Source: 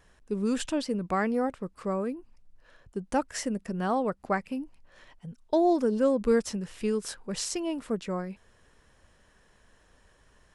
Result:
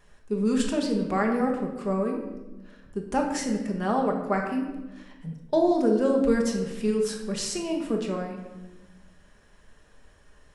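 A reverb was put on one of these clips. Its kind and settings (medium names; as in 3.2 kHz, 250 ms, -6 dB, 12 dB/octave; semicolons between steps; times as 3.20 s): simulated room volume 590 m³, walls mixed, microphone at 1.3 m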